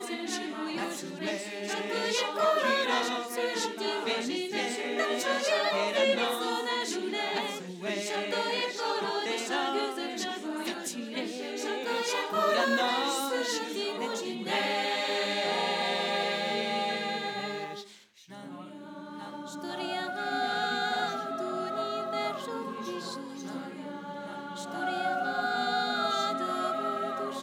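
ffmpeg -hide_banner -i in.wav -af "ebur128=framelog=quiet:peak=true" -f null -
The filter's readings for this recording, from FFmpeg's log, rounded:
Integrated loudness:
  I:         -30.6 LUFS
  Threshold: -40.8 LUFS
Loudness range:
  LRA:         6.3 LU
  Threshold: -50.8 LUFS
  LRA low:   -35.1 LUFS
  LRA high:  -28.8 LUFS
True peak:
  Peak:      -12.9 dBFS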